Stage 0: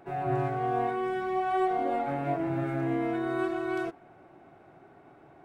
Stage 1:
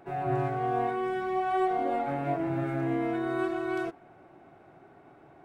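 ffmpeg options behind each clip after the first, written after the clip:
-af anull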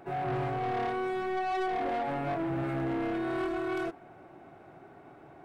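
-af "asoftclip=type=tanh:threshold=-30.5dB,volume=2.5dB"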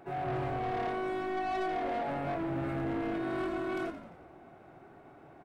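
-filter_complex "[0:a]asplit=7[a][b][c][d][e][f][g];[b]adelay=87,afreqshift=-52,volume=-11dB[h];[c]adelay=174,afreqshift=-104,volume=-16.2dB[i];[d]adelay=261,afreqshift=-156,volume=-21.4dB[j];[e]adelay=348,afreqshift=-208,volume=-26.6dB[k];[f]adelay=435,afreqshift=-260,volume=-31.8dB[l];[g]adelay=522,afreqshift=-312,volume=-37dB[m];[a][h][i][j][k][l][m]amix=inputs=7:normalize=0,volume=-2.5dB"

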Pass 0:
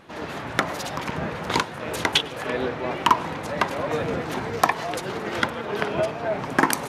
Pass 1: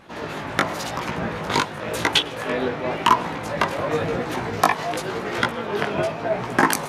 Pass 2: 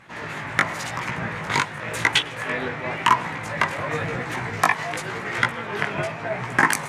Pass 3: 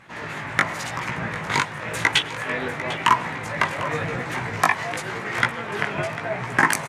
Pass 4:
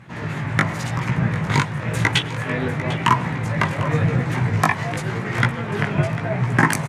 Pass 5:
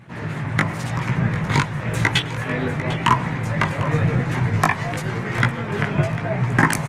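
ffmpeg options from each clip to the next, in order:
-af "flanger=delay=16.5:depth=3.7:speed=0.93,volume=5dB"
-af "equalizer=f=125:t=o:w=1:g=10,equalizer=f=1k:t=o:w=1:g=4,equalizer=f=2k:t=o:w=1:g=12,equalizer=f=8k:t=o:w=1:g=9,volume=-8dB"
-af "aecho=1:1:748|1496|2244:0.188|0.0622|0.0205"
-af "equalizer=f=120:t=o:w=2.4:g=15,volume=-1dB"
-ar 48000 -c:a libopus -b:a 24k

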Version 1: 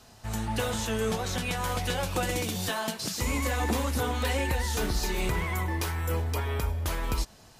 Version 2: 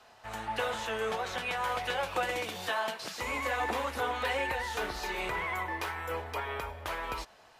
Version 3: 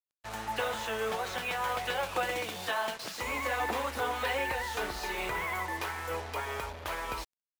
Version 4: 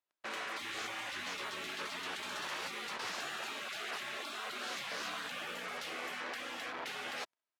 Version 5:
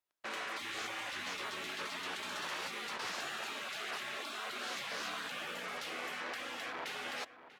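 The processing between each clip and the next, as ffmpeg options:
-filter_complex "[0:a]acrossover=split=450 3300:gain=0.126 1 0.2[a][b][c];[a][b][c]amix=inputs=3:normalize=0,volume=1.5dB"
-af "acrusher=bits=6:mix=0:aa=0.5"
-af "aecho=1:1:3.1:0.33,afftfilt=real='re*lt(hypot(re,im),0.02)':imag='im*lt(hypot(re,im),0.02)':win_size=1024:overlap=0.75,bandpass=f=920:t=q:w=0.52:csg=0,volume=9dB"
-filter_complex "[0:a]asplit=2[a][b];[b]adelay=641.4,volume=-13dB,highshelf=f=4k:g=-14.4[c];[a][c]amix=inputs=2:normalize=0"

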